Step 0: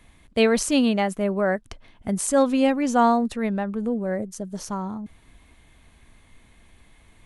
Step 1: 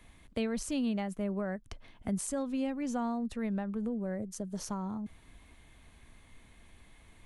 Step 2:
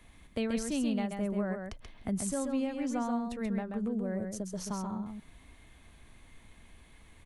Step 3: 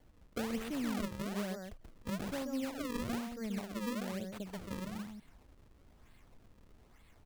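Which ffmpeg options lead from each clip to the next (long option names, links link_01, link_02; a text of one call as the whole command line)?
ffmpeg -i in.wav -filter_complex "[0:a]acrossover=split=180[link_01][link_02];[link_02]acompressor=threshold=-33dB:ratio=4[link_03];[link_01][link_03]amix=inputs=2:normalize=0,volume=-3.5dB" out.wav
ffmpeg -i in.wav -af "aecho=1:1:133:0.562" out.wav
ffmpeg -i in.wav -af "acrusher=samples=34:mix=1:aa=0.000001:lfo=1:lforange=54.4:lforate=1.1,volume=-5.5dB" out.wav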